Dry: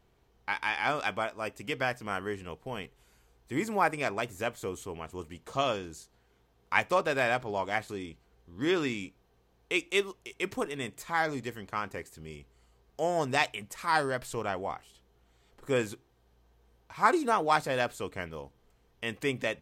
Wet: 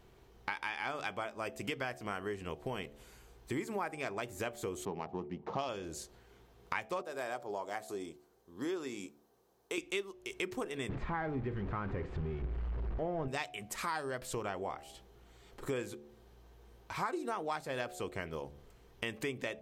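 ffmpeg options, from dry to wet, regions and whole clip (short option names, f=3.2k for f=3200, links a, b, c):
-filter_complex "[0:a]asettb=1/sr,asplit=3[a][b][c];[a]atrim=end=4.854[d];[b]atrim=start=4.85:end=5.69,asetpts=PTS-STARTPTS,afade=t=in:d=0.004:c=qsin,afade=t=out:st=0.836:d=0.004:c=qsin,adynamicsmooth=sensitivity=7.5:basefreq=1.2k,highpass=120,equalizer=f=190:t=q:w=4:g=9,equalizer=f=840:t=q:w=4:g=9,equalizer=f=1.5k:t=q:w=4:g=-5,equalizer=f=5.6k:t=q:w=4:g=5,lowpass=f=6.1k:w=0.5412,lowpass=f=6.1k:w=1.3066[e];[c]atrim=start=5.686[f];[d][e]acrossfade=d=0.004:c1=hsin:c2=qsin[g];[g][f]acrossfade=d=0.004:c1=qsin:c2=hsin,asettb=1/sr,asplit=3[h][i][j];[h]atrim=end=7.024[k];[i]atrim=start=7.02:end=9.78,asetpts=PTS-STARTPTS,afade=t=in:d=0.004:c=qsin,afade=t=out:st=2.756:d=0.004:c=qsin,highpass=f=750:p=1,equalizer=f=2.5k:w=0.69:g=-13.5[l];[j]atrim=start=9.776[m];[k][l]acrossfade=d=0.004:c1=hsin:c2=qsin[n];[n][m]acrossfade=d=0.004:c1=qsin:c2=hsin,asettb=1/sr,asplit=3[o][p][q];[o]atrim=end=10.894[r];[p]atrim=start=10.89:end=13.28,asetpts=PTS-STARTPTS,afade=t=in:d=0.004:c=qsin,afade=t=out:st=2.386:d=0.004:c=qsin,aeval=exprs='val(0)+0.5*0.0178*sgn(val(0))':c=same,lowpass=2.1k,aemphasis=mode=reproduction:type=bsi[s];[q]atrim=start=13.276[t];[r][s]acrossfade=d=0.004:c1=hsin:c2=qsin[u];[u][t]acrossfade=d=0.004:c1=qsin:c2=hsin,equalizer=f=370:t=o:w=0.24:g=5,bandreject=f=72.75:t=h:w=4,bandreject=f=145.5:t=h:w=4,bandreject=f=218.25:t=h:w=4,bandreject=f=291:t=h:w=4,bandreject=f=363.75:t=h:w=4,bandreject=f=436.5:t=h:w=4,bandreject=f=509.25:t=h:w=4,bandreject=f=582:t=h:w=4,bandreject=f=654.75:t=h:w=4,bandreject=f=727.5:t=h:w=4,bandreject=f=800.25:t=h:w=4,acompressor=threshold=-42dB:ratio=5,volume=6dB"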